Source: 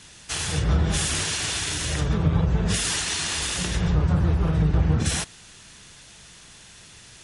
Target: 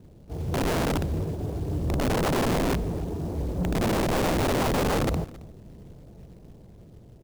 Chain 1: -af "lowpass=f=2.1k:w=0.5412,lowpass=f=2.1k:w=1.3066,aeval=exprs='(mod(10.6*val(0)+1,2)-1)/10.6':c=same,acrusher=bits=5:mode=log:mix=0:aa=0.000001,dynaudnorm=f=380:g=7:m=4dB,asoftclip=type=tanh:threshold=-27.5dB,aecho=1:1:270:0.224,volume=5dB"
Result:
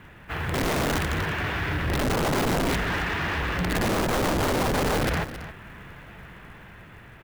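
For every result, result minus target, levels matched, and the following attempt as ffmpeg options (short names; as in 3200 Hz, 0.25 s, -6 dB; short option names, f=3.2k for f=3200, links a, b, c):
2000 Hz band +6.5 dB; echo-to-direct +7.5 dB
-af "lowpass=f=580:w=0.5412,lowpass=f=580:w=1.3066,aeval=exprs='(mod(10.6*val(0)+1,2)-1)/10.6':c=same,acrusher=bits=5:mode=log:mix=0:aa=0.000001,dynaudnorm=f=380:g=7:m=4dB,asoftclip=type=tanh:threshold=-27.5dB,aecho=1:1:270:0.224,volume=5dB"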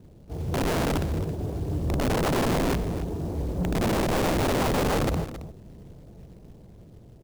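echo-to-direct +7.5 dB
-af "lowpass=f=580:w=0.5412,lowpass=f=580:w=1.3066,aeval=exprs='(mod(10.6*val(0)+1,2)-1)/10.6':c=same,acrusher=bits=5:mode=log:mix=0:aa=0.000001,dynaudnorm=f=380:g=7:m=4dB,asoftclip=type=tanh:threshold=-27.5dB,aecho=1:1:270:0.0944,volume=5dB"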